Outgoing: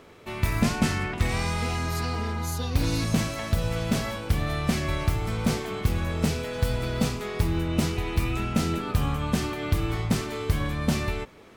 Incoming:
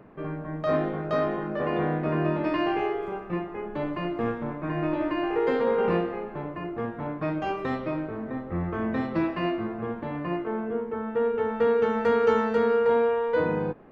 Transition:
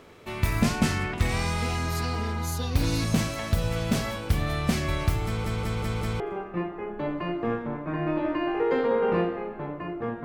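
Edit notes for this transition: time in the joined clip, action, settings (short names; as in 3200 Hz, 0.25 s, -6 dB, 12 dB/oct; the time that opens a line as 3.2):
outgoing
5.25 stutter in place 0.19 s, 5 plays
6.2 switch to incoming from 2.96 s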